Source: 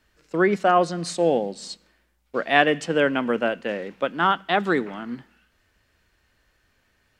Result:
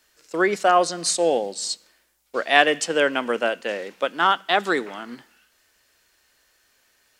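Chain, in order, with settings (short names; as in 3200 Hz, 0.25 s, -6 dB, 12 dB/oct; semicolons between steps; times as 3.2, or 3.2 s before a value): tone controls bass -14 dB, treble +11 dB; gain +1.5 dB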